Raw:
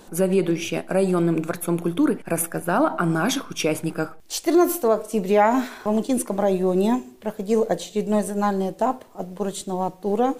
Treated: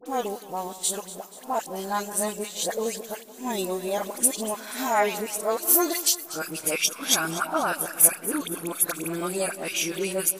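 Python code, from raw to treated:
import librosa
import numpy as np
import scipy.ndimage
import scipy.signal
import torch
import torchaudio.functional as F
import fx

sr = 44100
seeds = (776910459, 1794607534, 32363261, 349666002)

p1 = x[::-1].copy()
p2 = fx.tilt_eq(p1, sr, slope=4.0)
p3 = fx.dispersion(p2, sr, late='highs', ms=60.0, hz=1400.0)
p4 = p3 + fx.echo_split(p3, sr, split_hz=1400.0, low_ms=171, high_ms=241, feedback_pct=52, wet_db=-15.5, dry=0)
y = F.gain(torch.from_numpy(p4), -3.5).numpy()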